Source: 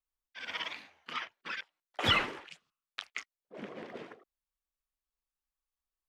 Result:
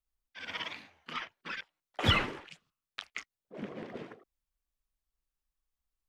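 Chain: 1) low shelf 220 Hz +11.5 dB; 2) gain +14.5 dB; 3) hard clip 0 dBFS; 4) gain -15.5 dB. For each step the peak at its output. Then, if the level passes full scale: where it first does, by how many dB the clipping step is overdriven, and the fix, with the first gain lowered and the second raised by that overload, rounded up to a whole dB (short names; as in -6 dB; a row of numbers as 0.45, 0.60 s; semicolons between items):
-11.5, +3.0, 0.0, -15.5 dBFS; step 2, 3.0 dB; step 2 +11.5 dB, step 4 -12.5 dB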